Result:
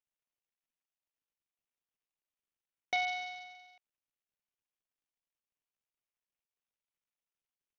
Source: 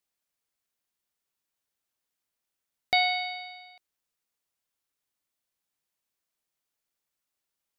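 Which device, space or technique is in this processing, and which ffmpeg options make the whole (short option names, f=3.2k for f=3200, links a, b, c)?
Bluetooth headset: -filter_complex "[0:a]asettb=1/sr,asplit=3[a][b][c];[a]atrim=end=2.964[d];[b]atrim=start=2.96:end=3.55,asetpts=PTS-STARTPTS,afade=t=in:d=0.004:c=qsin,afade=t=out:st=0.586:d=0.004:c=qsin,acrossover=split=4500[e][f];[f]acompressor=threshold=-41dB:ratio=4:attack=1:release=60[g];[e][g]amix=inputs=2:normalize=0[h];[c]atrim=start=3.546[i];[d][h]acrossfade=d=0.004:c1=hsin:c2=qsin[j];[j][i]acrossfade=d=0.004:c1=qsin:c2=hsin,highpass=240,aresample=8000,aresample=44100,volume=-7.5dB" -ar 48000 -c:a sbc -b:a 64k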